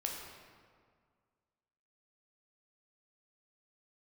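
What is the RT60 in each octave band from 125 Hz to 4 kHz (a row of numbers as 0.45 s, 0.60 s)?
2.1 s, 2.1 s, 1.9 s, 1.9 s, 1.5 s, 1.2 s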